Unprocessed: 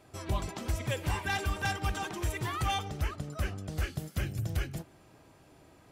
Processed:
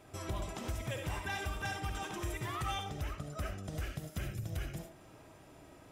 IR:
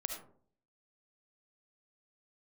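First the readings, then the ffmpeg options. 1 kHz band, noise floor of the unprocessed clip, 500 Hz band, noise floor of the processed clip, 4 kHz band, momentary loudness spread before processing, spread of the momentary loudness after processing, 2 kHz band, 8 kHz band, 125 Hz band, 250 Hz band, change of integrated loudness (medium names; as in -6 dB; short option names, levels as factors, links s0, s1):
-5.5 dB, -59 dBFS, -4.0 dB, -57 dBFS, -5.5 dB, 5 LU, 19 LU, -5.5 dB, -4.5 dB, -6.0 dB, -4.5 dB, -5.5 dB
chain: -filter_complex "[0:a]bandreject=f=4400:w=11,acompressor=threshold=0.00794:ratio=2[s0];[1:a]atrim=start_sample=2205,afade=t=out:st=0.16:d=0.01,atrim=end_sample=7497[s1];[s0][s1]afir=irnorm=-1:irlink=0,volume=1.26"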